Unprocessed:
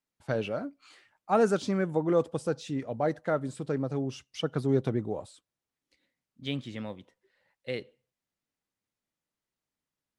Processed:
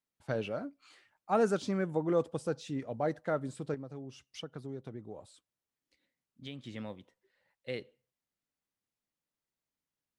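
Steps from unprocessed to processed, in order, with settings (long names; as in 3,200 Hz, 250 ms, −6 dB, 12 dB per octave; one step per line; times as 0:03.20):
0:03.74–0:06.64: downward compressor 3 to 1, threshold −39 dBFS, peak gain reduction 14 dB
level −4 dB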